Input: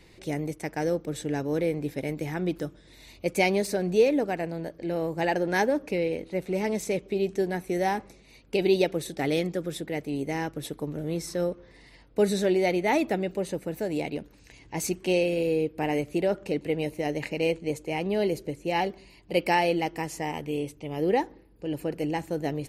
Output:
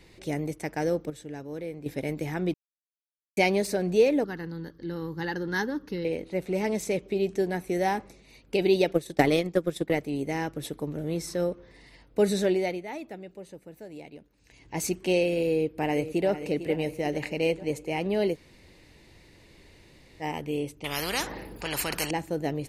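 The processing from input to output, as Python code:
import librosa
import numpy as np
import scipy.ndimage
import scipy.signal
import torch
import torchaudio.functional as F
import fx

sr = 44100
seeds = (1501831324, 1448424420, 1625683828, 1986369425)

y = fx.fixed_phaser(x, sr, hz=2400.0, stages=6, at=(4.24, 6.05))
y = fx.transient(y, sr, attack_db=12, sustain_db=-8, at=(8.92, 10.0))
y = fx.echo_throw(y, sr, start_s=15.51, length_s=0.77, ms=450, feedback_pct=60, wet_db=-11.5)
y = fx.spectral_comp(y, sr, ratio=4.0, at=(20.84, 22.11))
y = fx.edit(y, sr, fx.clip_gain(start_s=1.1, length_s=0.76, db=-9.5),
    fx.silence(start_s=2.54, length_s=0.83),
    fx.fade_down_up(start_s=12.46, length_s=2.29, db=-13.5, fade_s=0.4),
    fx.room_tone_fill(start_s=18.34, length_s=1.88, crossfade_s=0.06), tone=tone)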